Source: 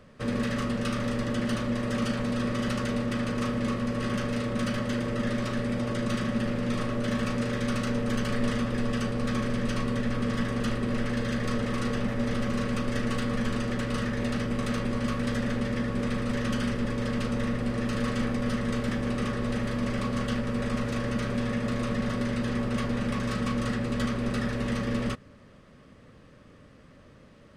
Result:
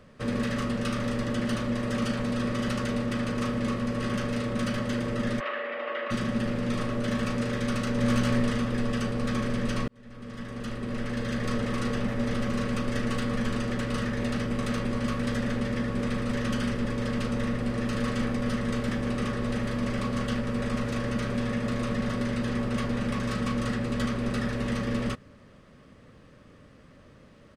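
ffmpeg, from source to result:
-filter_complex "[0:a]asplit=3[s0][s1][s2];[s0]afade=t=out:st=5.39:d=0.02[s3];[s1]highpass=f=410:w=0.5412,highpass=f=410:w=1.3066,equalizer=f=420:t=q:w=4:g=-5,equalizer=f=600:t=q:w=4:g=4,equalizer=f=1200:t=q:w=4:g=5,equalizer=f=1900:t=q:w=4:g=7,equalizer=f=2800:t=q:w=4:g=5,lowpass=f=3100:w=0.5412,lowpass=f=3100:w=1.3066,afade=t=in:st=5.39:d=0.02,afade=t=out:st=6.1:d=0.02[s4];[s2]afade=t=in:st=6.1:d=0.02[s5];[s3][s4][s5]amix=inputs=3:normalize=0,asplit=2[s6][s7];[s7]afade=t=in:st=7.58:d=0.01,afade=t=out:st=8.02:d=0.01,aecho=0:1:400|800|1200:0.891251|0.133688|0.0200531[s8];[s6][s8]amix=inputs=2:normalize=0,asplit=2[s9][s10];[s9]atrim=end=9.88,asetpts=PTS-STARTPTS,afade=t=out:st=9.876:d=0.004:c=hsin[s11];[s10]atrim=start=9.88,asetpts=PTS-STARTPTS,afade=t=in:d=1.63[s12];[s11][s12]concat=n=2:v=0:a=1"

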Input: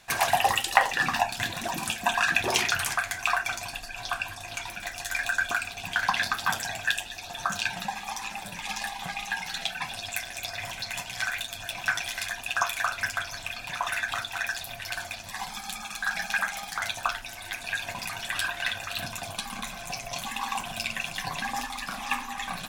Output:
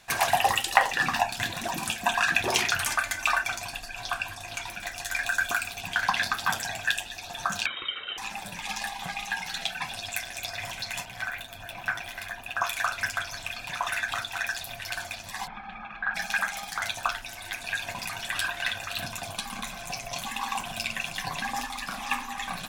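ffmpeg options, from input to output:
-filter_complex "[0:a]asettb=1/sr,asplit=3[s0][s1][s2];[s0]atrim=end=2.864[s3];[s1]atrim=start=2.86:end=3.44,asetpts=PTS-STARTPTS,afade=t=in:d=0.004:c=qsin,afade=t=out:st=0.576:d=0.004:c=qsin,aecho=1:1:3.4:0.65,atrim=end_sample=25578[s4];[s2]atrim=start=3.436[s5];[s3][s4]acrossfade=d=0.004:c1=hsin:c2=qsin[s6];[s6][s5]acrossfade=d=0.004:c1=qsin:c2=hsin,asettb=1/sr,asplit=3[s7][s8][s9];[s7]atrim=end=5.314[s10];[s8]atrim=start=5.31:end=5.81,asetpts=PTS-STARTPTS,afade=t=in:d=0.004:c=qsin,afade=t=out:st=0.496:d=0.004:c=qsin,highshelf=f=11000:g=11.5[s11];[s9]atrim=start=5.806[s12];[s10][s11]acrossfade=d=0.004:c1=hsin:c2=qsin[s13];[s13][s12]acrossfade=d=0.004:c1=qsin:c2=hsin,asettb=1/sr,asplit=3[s14][s15][s16];[s14]atrim=end=7.664[s17];[s15]atrim=start=7.66:end=8.18,asetpts=PTS-STARTPTS,afade=t=in:d=0.004:c=qsin,afade=t=out:st=0.516:d=0.004:c=qsin,lowpass=f=3300:t=q:w=0.5098,lowpass=f=3300:t=q:w=0.6013,lowpass=f=3300:t=q:w=0.9,lowpass=f=3300:t=q:w=2.563,afreqshift=-3900[s18];[s16]atrim=start=8.176[s19];[s17][s18]acrossfade=d=0.004:c1=hsin:c2=qsin[s20];[s20][s19]acrossfade=d=0.004:c1=qsin:c2=hsin,asettb=1/sr,asplit=3[s21][s22][s23];[s21]atrim=end=11.054[s24];[s22]atrim=start=11.05:end=12.64,asetpts=PTS-STARTPTS,afade=t=in:d=0.004:c=qsin,afade=t=out:st=1.586:d=0.004:c=qsin,equalizer=f=6500:w=0.48:g=-12[s25];[s23]atrim=start=12.636[s26];[s24][s25]acrossfade=d=0.004:c1=hsin:c2=qsin[s27];[s27][s26]acrossfade=d=0.004:c1=qsin:c2=hsin,asplit=3[s28][s29][s30];[s28]afade=t=out:st=15.46:d=0.02[s31];[s29]lowpass=f=2300:w=0.5412,lowpass=f=2300:w=1.3066,afade=t=in:st=15.46:d=0.02,afade=t=out:st=16.14:d=0.02[s32];[s30]afade=t=in:st=16.14:d=0.02[s33];[s31][s32][s33]amix=inputs=3:normalize=0"

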